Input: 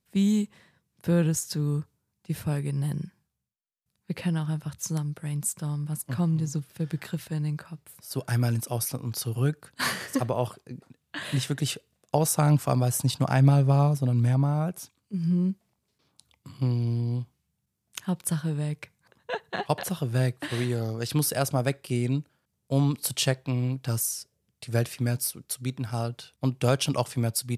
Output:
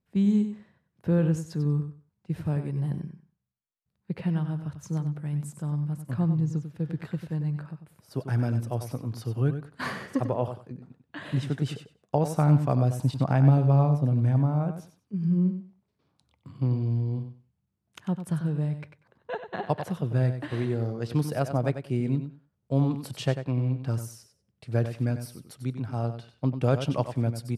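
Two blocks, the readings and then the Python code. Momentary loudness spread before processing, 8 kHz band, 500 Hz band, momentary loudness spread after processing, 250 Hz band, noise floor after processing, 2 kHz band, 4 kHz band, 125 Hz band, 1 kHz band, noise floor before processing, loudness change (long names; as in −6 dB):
13 LU, below −15 dB, −0.5 dB, 13 LU, +0.5 dB, −78 dBFS, −5.0 dB, below −10 dB, +0.5 dB, −1.5 dB, −79 dBFS, −0.5 dB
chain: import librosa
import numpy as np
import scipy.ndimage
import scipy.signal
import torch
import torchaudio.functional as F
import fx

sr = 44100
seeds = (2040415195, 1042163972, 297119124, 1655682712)

p1 = fx.lowpass(x, sr, hz=1100.0, slope=6)
y = p1 + fx.echo_feedback(p1, sr, ms=95, feedback_pct=18, wet_db=-9.5, dry=0)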